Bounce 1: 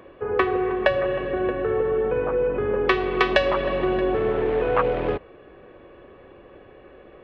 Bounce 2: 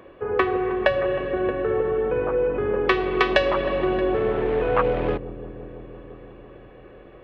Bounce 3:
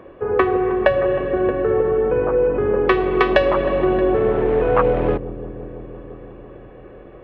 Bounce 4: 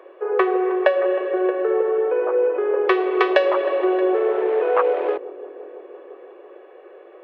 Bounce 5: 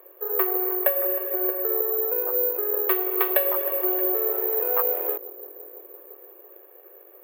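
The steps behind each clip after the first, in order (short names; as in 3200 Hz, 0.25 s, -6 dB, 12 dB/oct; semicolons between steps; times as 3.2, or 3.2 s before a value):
dark delay 0.169 s, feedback 82%, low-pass 450 Hz, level -14.5 dB
high shelf 2400 Hz -11.5 dB; gain +5.5 dB
Chebyshev high-pass 360 Hz, order 5; gain -1 dB
careless resampling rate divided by 3×, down none, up zero stuff; gain -9.5 dB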